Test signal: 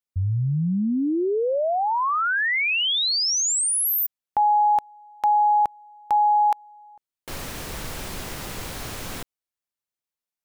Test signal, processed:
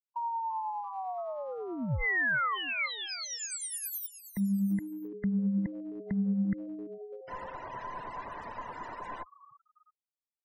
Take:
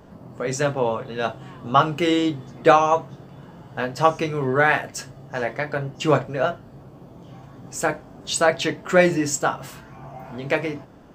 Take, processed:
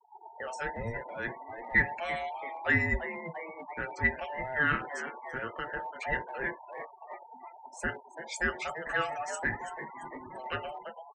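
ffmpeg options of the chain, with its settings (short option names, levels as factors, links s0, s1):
-filter_complex "[0:a]afftfilt=real='real(if(between(b,1,1008),(2*floor((b-1)/48)+1)*48-b,b),0)':imag='imag(if(between(b,1,1008),(2*floor((b-1)/48)+1)*48-b,b),0)*if(between(b,1,1008),-1,1)':win_size=2048:overlap=0.75,bandreject=f=800:w=12,asplit=2[s0][s1];[s1]asplit=5[s2][s3][s4][s5][s6];[s2]adelay=338,afreqshift=110,volume=0.211[s7];[s3]adelay=676,afreqshift=220,volume=0.112[s8];[s4]adelay=1014,afreqshift=330,volume=0.0596[s9];[s5]adelay=1352,afreqshift=440,volume=0.0316[s10];[s6]adelay=1690,afreqshift=550,volume=0.0166[s11];[s7][s8][s9][s10][s11]amix=inputs=5:normalize=0[s12];[s0][s12]amix=inputs=2:normalize=0,afftfilt=real='re*gte(hypot(re,im),0.0224)':imag='im*gte(hypot(re,im),0.0224)':win_size=1024:overlap=0.75,acrossover=split=1600[s13][s14];[s13]aeval=exprs='val(0)*(1-0.5/2+0.5/2*cos(2*PI*9.6*n/s))':c=same[s15];[s14]aeval=exprs='val(0)*(1-0.5/2-0.5/2*cos(2*PI*9.6*n/s))':c=same[s16];[s15][s16]amix=inputs=2:normalize=0,highshelf=f=2500:t=q:w=1.5:g=-8,acrossover=split=200|1100[s17][s18][s19];[s18]acompressor=threshold=0.0224:ratio=6:attack=0.28:release=54:knee=1:detection=peak[s20];[s17][s20][s19]amix=inputs=3:normalize=0,volume=0.562"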